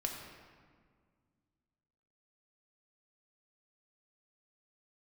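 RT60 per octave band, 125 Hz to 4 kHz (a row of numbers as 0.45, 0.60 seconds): 2.7, 2.6, 1.9, 1.8, 1.5, 1.1 seconds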